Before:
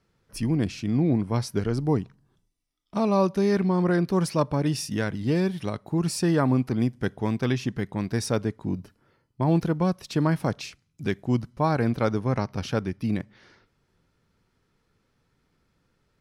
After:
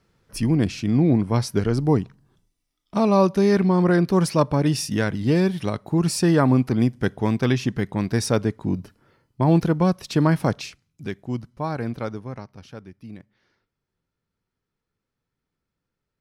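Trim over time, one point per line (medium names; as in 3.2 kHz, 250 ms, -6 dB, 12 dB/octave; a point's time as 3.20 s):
10.50 s +4.5 dB
11.13 s -4 dB
11.98 s -4 dB
12.58 s -13 dB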